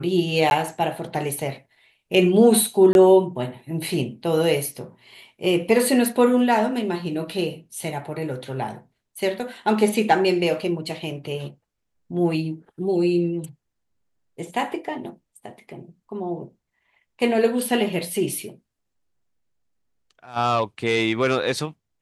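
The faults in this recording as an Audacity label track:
0.500000	0.510000	drop-out 11 ms
2.930000	2.950000	drop-out 21 ms

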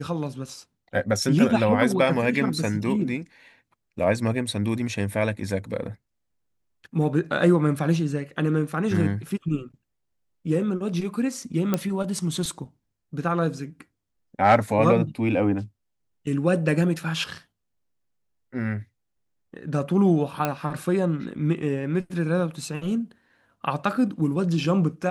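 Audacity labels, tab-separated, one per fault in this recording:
11.740000	11.740000	click −9 dBFS
20.450000	20.450000	click −10 dBFS

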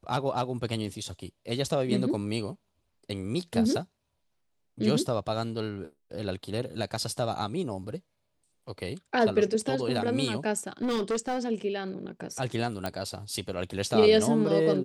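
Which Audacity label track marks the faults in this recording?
10.820000	11.490000	clipping −24.5 dBFS
12.860000	12.860000	click −17 dBFS

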